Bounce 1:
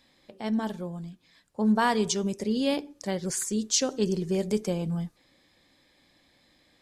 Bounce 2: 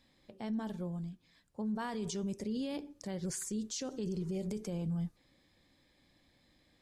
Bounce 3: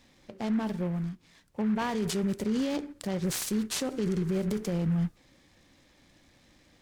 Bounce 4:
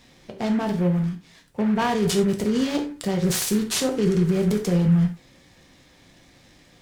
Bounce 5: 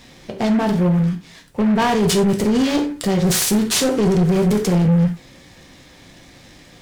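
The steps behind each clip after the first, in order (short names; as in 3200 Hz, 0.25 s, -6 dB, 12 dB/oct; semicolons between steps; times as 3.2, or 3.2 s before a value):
spectral repair 4.14–4.44, 890–1900 Hz after; low shelf 220 Hz +9 dB; limiter -22.5 dBFS, peak gain reduction 11.5 dB; gain -7.5 dB
noise-modulated delay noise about 1400 Hz, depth 0.04 ms; gain +8 dB
non-linear reverb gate 0.12 s falling, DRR 4 dB; gain +6.5 dB
soft clip -20 dBFS, distortion -13 dB; gain +8.5 dB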